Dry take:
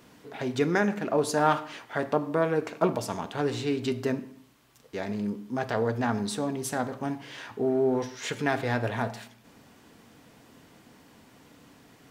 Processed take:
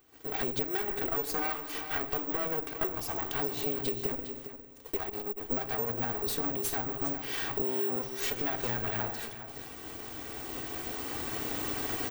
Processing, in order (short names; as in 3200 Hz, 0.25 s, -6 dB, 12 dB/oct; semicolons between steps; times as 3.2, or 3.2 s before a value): minimum comb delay 2.6 ms; recorder AGC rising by 5.9 dB/s; gate -54 dBFS, range -16 dB; compressor 6:1, threshold -38 dBFS, peak gain reduction 16 dB; on a send: echo 0.407 s -11 dB; on the sum: careless resampling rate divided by 2×, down none, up zero stuff; 4.96–5.51 core saturation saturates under 400 Hz; gain +5 dB